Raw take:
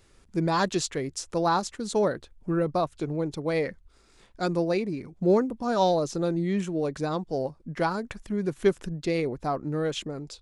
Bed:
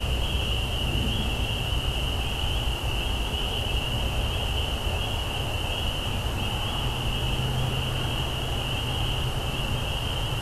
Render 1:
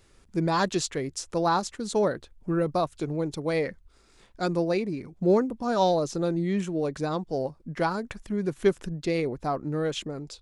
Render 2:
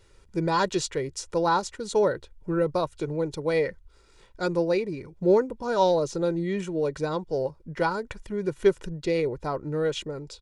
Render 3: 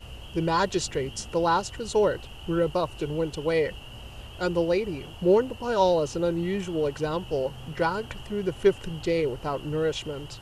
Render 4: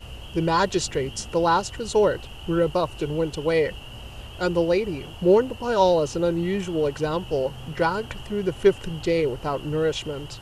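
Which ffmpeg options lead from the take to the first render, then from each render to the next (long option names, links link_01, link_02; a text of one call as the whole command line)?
ffmpeg -i in.wav -filter_complex "[0:a]asettb=1/sr,asplit=3[link_01][link_02][link_03];[link_01]atrim=end=2.594[link_04];[link_02]atrim=start=2.59:end=3.56,asetpts=PTS-STARTPTS,afade=type=in:duration=0.004:curve=qsin,afade=type=out:start_time=0.966:duration=0.004:curve=qsin,highshelf=frequency=5000:gain=5[link_05];[link_03]atrim=start=3.556[link_06];[link_04][link_05]acrossfade=duration=0.004:curve1=hsin:curve2=qsin[link_07];[link_07][link_06]acrossfade=duration=0.004:curve1=qsin:curve2=hsin" out.wav
ffmpeg -i in.wav -af "highshelf=frequency=9600:gain=-6.5,aecho=1:1:2.1:0.5" out.wav
ffmpeg -i in.wav -i bed.wav -filter_complex "[1:a]volume=-15.5dB[link_01];[0:a][link_01]amix=inputs=2:normalize=0" out.wav
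ffmpeg -i in.wav -af "volume=3dB" out.wav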